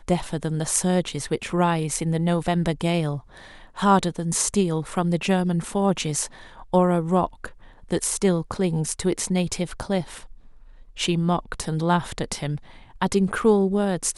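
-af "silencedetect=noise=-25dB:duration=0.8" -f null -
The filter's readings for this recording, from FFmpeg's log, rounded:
silence_start: 10.01
silence_end: 11.00 | silence_duration: 0.99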